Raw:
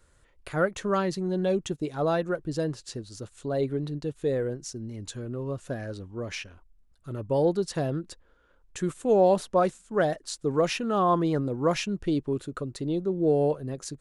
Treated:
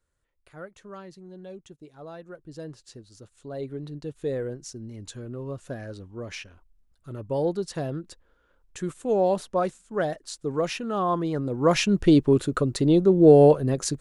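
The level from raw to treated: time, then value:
0:02.13 −16 dB
0:02.73 −8.5 dB
0:03.37 −8.5 dB
0:04.24 −2 dB
0:11.33 −2 dB
0:11.97 +9.5 dB

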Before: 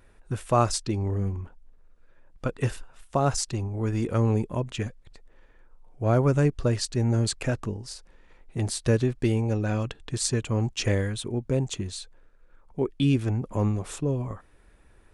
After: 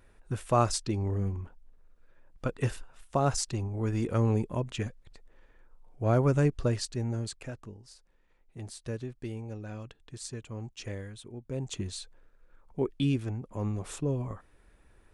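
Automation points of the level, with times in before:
0:06.63 −3 dB
0:07.55 −14 dB
0:11.41 −14 dB
0:11.81 −3 dB
0:12.91 −3 dB
0:13.50 −10.5 dB
0:13.86 −3.5 dB

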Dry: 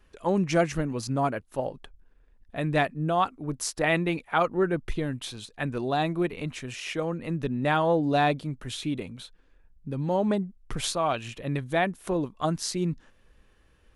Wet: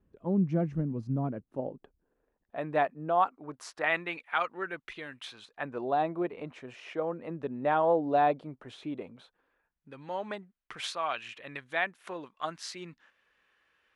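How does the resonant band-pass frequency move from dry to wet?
resonant band-pass, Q 0.98
0:01.24 170 Hz
0:02.57 800 Hz
0:03.17 800 Hz
0:04.37 2,100 Hz
0:05.13 2,100 Hz
0:05.83 680 Hz
0:09.16 680 Hz
0:09.98 1,900 Hz

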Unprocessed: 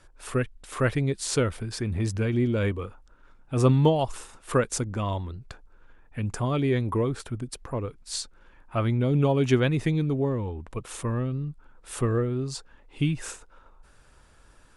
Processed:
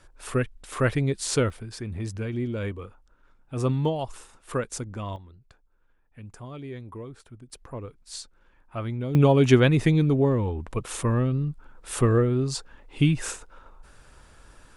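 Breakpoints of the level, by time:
+1 dB
from 0:01.50 −5 dB
from 0:05.16 −13.5 dB
from 0:07.50 −6 dB
from 0:09.15 +4.5 dB

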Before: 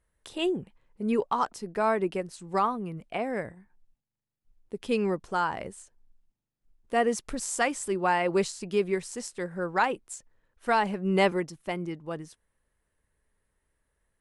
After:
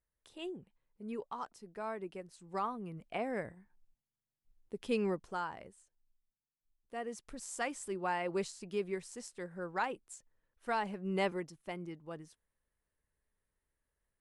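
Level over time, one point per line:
0:02.09 −15 dB
0:03.17 −6 dB
0:05.09 −6 dB
0:05.77 −16.5 dB
0:07.01 −16.5 dB
0:07.69 −10 dB

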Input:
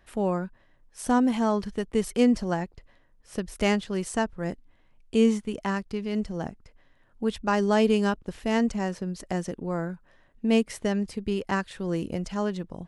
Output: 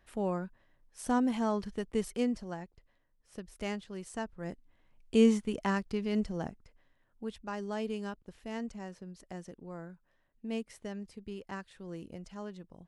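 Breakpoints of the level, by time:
0:02.00 −6.5 dB
0:02.43 −13 dB
0:04.03 −13 dB
0:05.15 −2.5 dB
0:06.20 −2.5 dB
0:07.51 −14.5 dB

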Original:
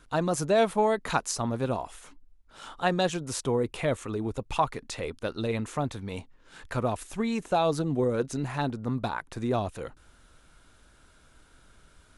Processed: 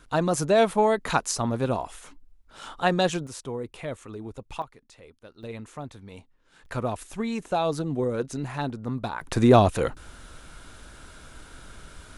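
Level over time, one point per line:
+3 dB
from 0:03.27 −6.5 dB
from 0:04.62 −16 dB
from 0:05.43 −8 dB
from 0:06.66 −0.5 dB
from 0:09.21 +12 dB

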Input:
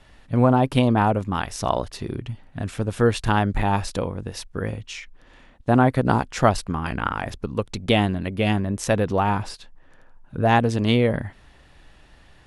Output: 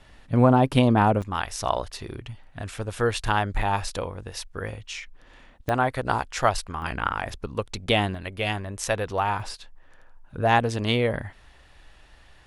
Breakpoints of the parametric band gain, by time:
parametric band 200 Hz 2.1 octaves
−0.5 dB
from 0:01.22 −10.5 dB
from 0:04.92 −3 dB
from 0:05.69 −14.5 dB
from 0:06.82 −7.5 dB
from 0:08.15 −14 dB
from 0:09.40 −7.5 dB

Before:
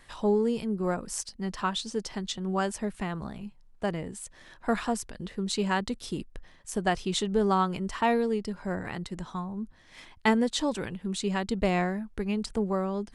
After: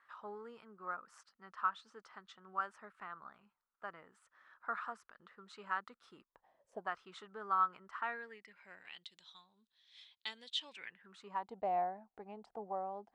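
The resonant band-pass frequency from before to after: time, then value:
resonant band-pass, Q 5.6
0:06.19 1,300 Hz
0:06.71 500 Hz
0:06.90 1,300 Hz
0:07.94 1,300 Hz
0:09.16 3,700 Hz
0:10.45 3,700 Hz
0:11.55 760 Hz

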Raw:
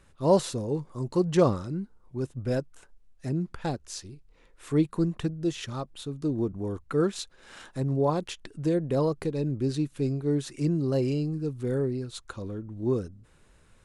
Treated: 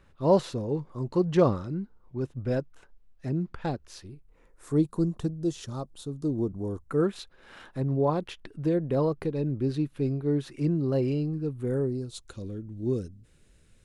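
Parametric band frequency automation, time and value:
parametric band −12.5 dB 1.3 octaves
0:03.82 9,000 Hz
0:04.85 2,200 Hz
0:06.75 2,200 Hz
0:07.20 7,500 Hz
0:11.45 7,500 Hz
0:12.35 1,000 Hz

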